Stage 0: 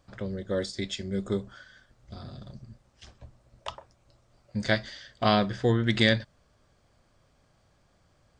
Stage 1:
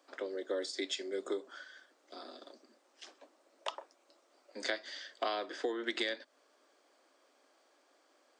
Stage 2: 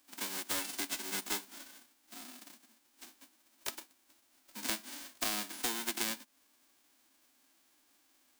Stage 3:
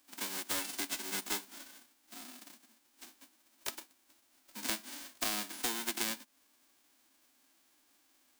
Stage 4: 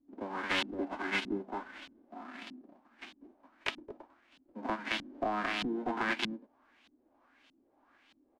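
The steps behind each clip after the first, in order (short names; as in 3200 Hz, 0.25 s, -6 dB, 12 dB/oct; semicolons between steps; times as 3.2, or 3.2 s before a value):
steep high-pass 270 Hz 72 dB/oct; compressor 8:1, threshold -32 dBFS, peak gain reduction 13.5 dB
spectral whitening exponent 0.1
nothing audible
echo 0.221 s -4.5 dB; LFO low-pass saw up 1.6 Hz 220–3500 Hz; gain +5 dB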